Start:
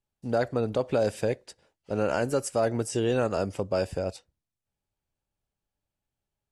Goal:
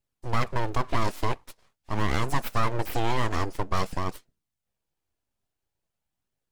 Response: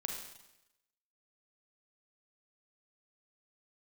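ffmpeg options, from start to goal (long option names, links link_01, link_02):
-af "aeval=exprs='abs(val(0))':channel_layout=same,flanger=delay=0.4:depth=2.9:regen=-57:speed=0.47:shape=triangular,volume=7dB"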